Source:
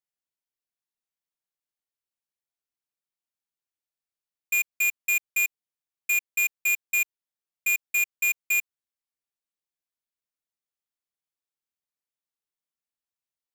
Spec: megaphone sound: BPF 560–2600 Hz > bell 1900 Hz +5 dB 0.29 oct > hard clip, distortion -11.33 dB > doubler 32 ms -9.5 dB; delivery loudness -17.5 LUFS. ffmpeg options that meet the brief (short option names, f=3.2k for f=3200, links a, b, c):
-filter_complex "[0:a]highpass=560,lowpass=2.6k,equalizer=f=1.9k:t=o:w=0.29:g=5,asoftclip=type=hard:threshold=-28.5dB,asplit=2[a][b];[b]adelay=32,volume=-9.5dB[c];[a][c]amix=inputs=2:normalize=0,volume=14dB"